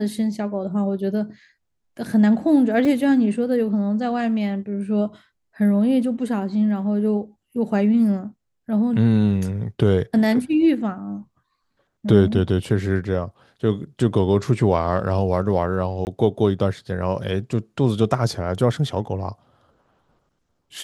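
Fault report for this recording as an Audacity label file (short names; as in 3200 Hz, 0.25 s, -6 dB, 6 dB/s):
2.850000	2.850000	gap 2.6 ms
16.050000	16.070000	gap 19 ms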